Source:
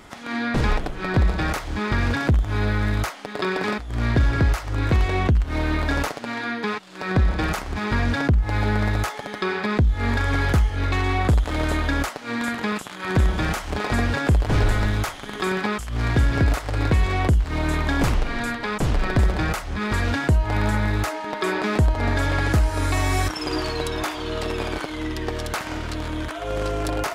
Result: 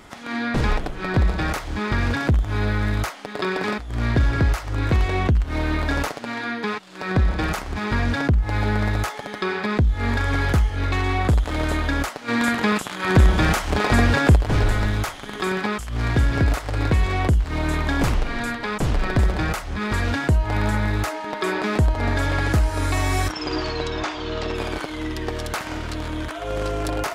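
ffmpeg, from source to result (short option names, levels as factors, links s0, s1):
-filter_complex "[0:a]asettb=1/sr,asplit=3[s0][s1][s2];[s0]atrim=end=12.284[s3];[s1]atrim=start=12.28:end=14.36,asetpts=PTS-STARTPTS,afade=t=in:d=0.004:c=qsin,afade=t=out:st=2.076:d=0.004:c=qsin,acontrast=31[s4];[s2]atrim=start=14.356[s5];[s3][s4]acrossfade=d=0.004:c1=hsin:c2=qsin[s6];[s6][s5]acrossfade=d=0.004:c1=qsin:c2=hsin,asettb=1/sr,asplit=3[s7][s8][s9];[s7]atrim=end=23.324[s10];[s8]atrim=start=23.32:end=24.55,asetpts=PTS-STARTPTS,afade=t=in:d=0.004:c=qsin,afade=t=out:st=1.226:d=0.004:c=qsin,lowpass=f=6500:w=0.5412,lowpass=f=6500:w=1.3066[s11];[s9]atrim=start=24.546[s12];[s10][s11]acrossfade=d=0.004:c1=hsin:c2=qsin[s13];[s13][s12]acrossfade=d=0.004:c1=qsin:c2=hsin"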